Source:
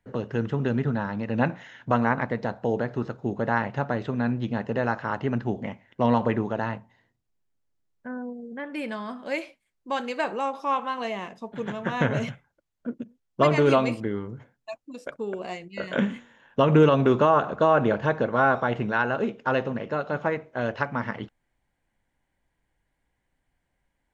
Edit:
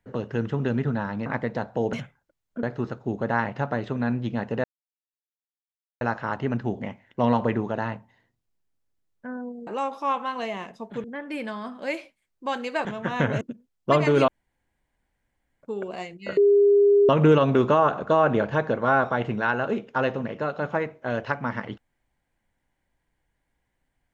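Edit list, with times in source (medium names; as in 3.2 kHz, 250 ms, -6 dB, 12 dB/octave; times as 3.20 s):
1.26–2.14 s: delete
4.82 s: insert silence 1.37 s
10.29–11.66 s: move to 8.48 s
12.22–12.92 s: move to 2.81 s
13.79–15.14 s: room tone
15.88–16.60 s: bleep 405 Hz -13.5 dBFS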